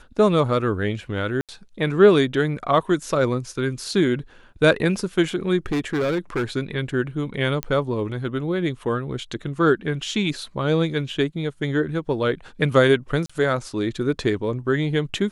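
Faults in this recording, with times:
0:01.41–0:01.49: drop-out 77 ms
0:05.66–0:06.44: clipping −19 dBFS
0:07.63: click −9 dBFS
0:13.26–0:13.29: drop-out 35 ms

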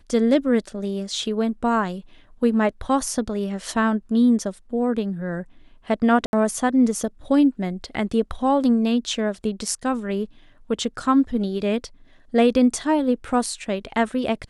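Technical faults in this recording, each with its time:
0:06.26–0:06.33: drop-out 71 ms

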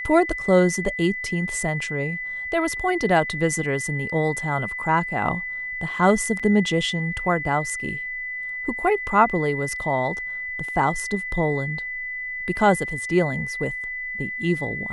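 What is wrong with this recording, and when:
whistle 2,000 Hz −28 dBFS
0:06.39–0:06.40: drop-out 5.9 ms

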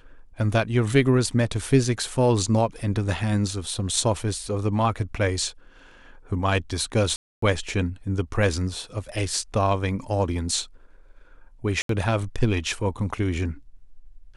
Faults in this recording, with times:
0:07.16–0:07.42: drop-out 264 ms
0:11.82–0:11.89: drop-out 73 ms

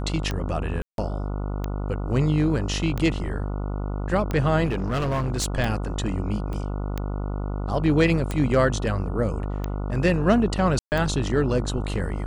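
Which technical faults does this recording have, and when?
mains buzz 50 Hz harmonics 29 −28 dBFS
scratch tick 45 rpm −14 dBFS
0:00.82–0:00.98: drop-out 162 ms
0:04.65–0:05.46: clipping −21 dBFS
0:06.53: click −22 dBFS
0:10.79–0:10.92: drop-out 129 ms

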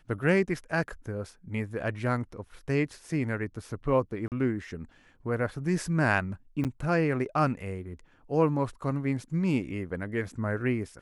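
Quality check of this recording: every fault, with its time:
0:04.28–0:04.32: drop-out 38 ms
0:06.64–0:06.65: drop-out 8 ms

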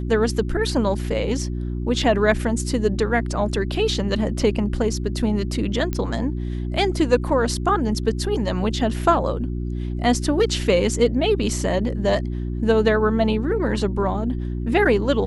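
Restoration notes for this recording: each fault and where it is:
mains hum 60 Hz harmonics 6 −26 dBFS
0:05.93: click −12 dBFS

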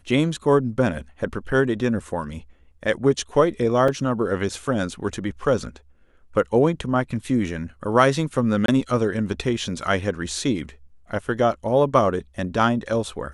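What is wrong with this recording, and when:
0:03.88: drop-out 3.4 ms
0:08.66–0:08.68: drop-out 23 ms

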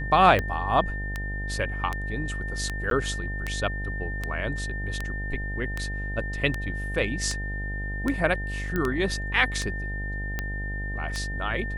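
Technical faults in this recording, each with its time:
mains buzz 50 Hz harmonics 18 −32 dBFS
scratch tick 78 rpm −14 dBFS
whistle 1,800 Hz −34 dBFS
0:02.90–0:02.91: drop-out 12 ms
0:08.76: click −15 dBFS

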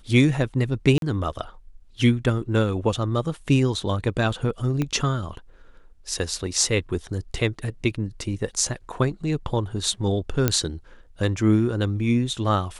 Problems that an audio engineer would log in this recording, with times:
0:00.98–0:01.02: drop-out 42 ms
0:04.82: click −13 dBFS
0:10.48: click −5 dBFS

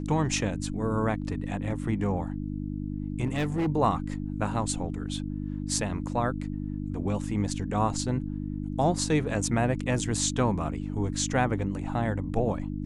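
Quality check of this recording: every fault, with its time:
mains hum 50 Hz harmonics 6 −33 dBFS
0:03.26–0:03.68: clipping −23.5 dBFS

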